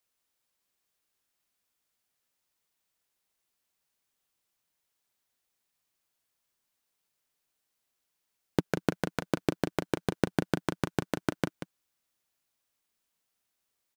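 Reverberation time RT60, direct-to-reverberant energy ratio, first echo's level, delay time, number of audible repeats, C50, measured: none, none, -10.5 dB, 0.186 s, 1, none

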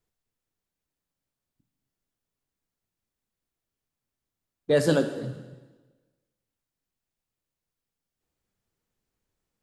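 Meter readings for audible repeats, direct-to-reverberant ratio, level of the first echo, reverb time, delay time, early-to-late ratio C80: none, 8.0 dB, none, 1.3 s, none, 11.0 dB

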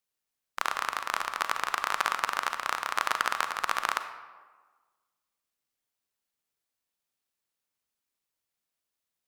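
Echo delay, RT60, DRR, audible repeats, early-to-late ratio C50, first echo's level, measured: none, 1.4 s, 8.5 dB, none, 9.5 dB, none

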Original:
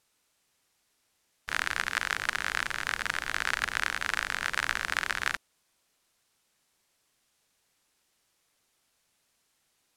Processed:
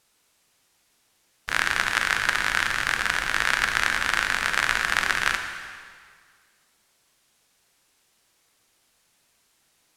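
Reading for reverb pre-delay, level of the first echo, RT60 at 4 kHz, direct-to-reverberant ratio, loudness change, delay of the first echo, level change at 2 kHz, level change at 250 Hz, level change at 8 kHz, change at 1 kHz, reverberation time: 5 ms, none, 1.8 s, 5.0 dB, +7.0 dB, none, +7.5 dB, +7.5 dB, +7.0 dB, +7.0 dB, 1.9 s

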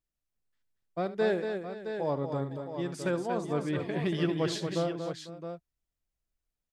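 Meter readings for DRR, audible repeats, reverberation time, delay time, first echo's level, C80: none, 4, none, 73 ms, -15.5 dB, none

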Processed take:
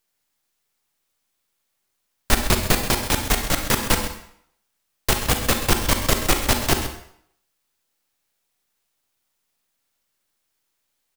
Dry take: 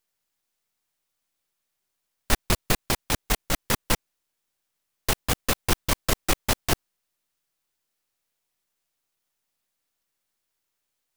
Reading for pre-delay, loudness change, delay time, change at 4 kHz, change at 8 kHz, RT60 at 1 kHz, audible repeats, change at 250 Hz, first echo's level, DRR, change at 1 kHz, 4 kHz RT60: 35 ms, +5.0 dB, 0.131 s, +5.5 dB, +5.0 dB, 0.70 s, 1, +5.5 dB, -12.5 dB, 4.5 dB, +5.5 dB, 0.60 s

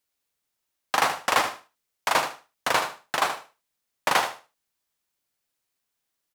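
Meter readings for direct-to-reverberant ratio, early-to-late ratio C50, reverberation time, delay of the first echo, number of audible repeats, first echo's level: none, none, none, 77 ms, 2, -9.5 dB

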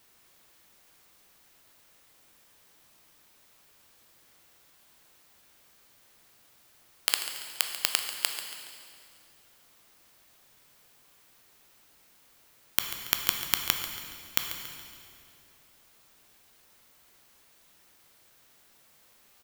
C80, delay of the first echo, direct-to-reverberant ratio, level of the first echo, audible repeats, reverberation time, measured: 6.0 dB, 0.14 s, 4.0 dB, -12.5 dB, 2, 2.4 s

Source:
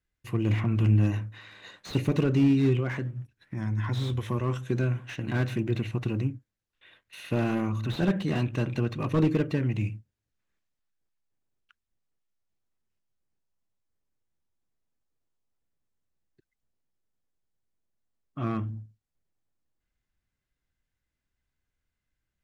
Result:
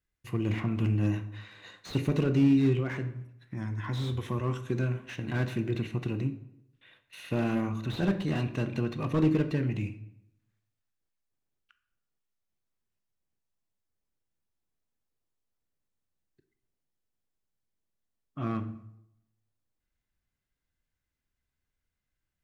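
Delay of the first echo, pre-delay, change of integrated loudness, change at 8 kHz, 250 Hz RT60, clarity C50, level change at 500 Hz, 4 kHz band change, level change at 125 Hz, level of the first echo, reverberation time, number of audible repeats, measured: none, 15 ms, -2.0 dB, n/a, 0.85 s, 13.0 dB, -2.0 dB, -2.0 dB, -3.5 dB, none, 0.80 s, none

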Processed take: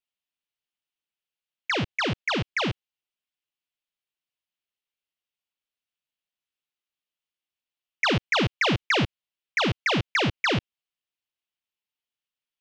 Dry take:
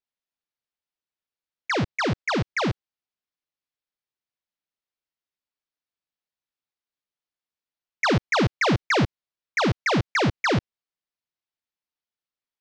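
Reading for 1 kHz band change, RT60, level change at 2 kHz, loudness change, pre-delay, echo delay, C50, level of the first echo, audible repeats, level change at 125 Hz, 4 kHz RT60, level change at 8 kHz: -3.0 dB, none, 0.0 dB, -1.0 dB, none, none, none, none, none, -3.5 dB, none, -2.5 dB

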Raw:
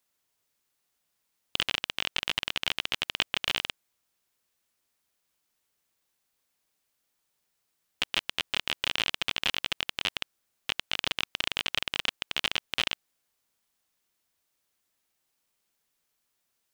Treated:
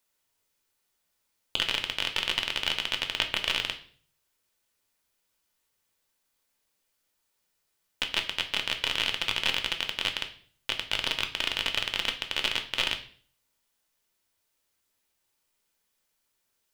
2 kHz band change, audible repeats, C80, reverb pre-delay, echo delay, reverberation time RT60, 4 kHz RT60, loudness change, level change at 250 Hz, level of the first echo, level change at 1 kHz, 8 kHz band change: +1.5 dB, none, 16.5 dB, 3 ms, none, 0.50 s, 0.45 s, +1.5 dB, +0.5 dB, none, +1.0 dB, +1.0 dB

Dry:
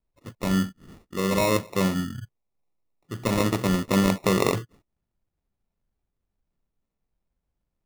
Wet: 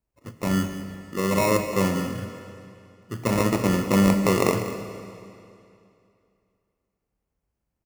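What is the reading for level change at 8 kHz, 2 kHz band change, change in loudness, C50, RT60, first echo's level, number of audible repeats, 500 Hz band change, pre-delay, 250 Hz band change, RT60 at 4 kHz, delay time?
+1.5 dB, +1.5 dB, +1.0 dB, 7.5 dB, 2.6 s, -14.0 dB, 1, +2.0 dB, 18 ms, +2.0 dB, 2.4 s, 0.194 s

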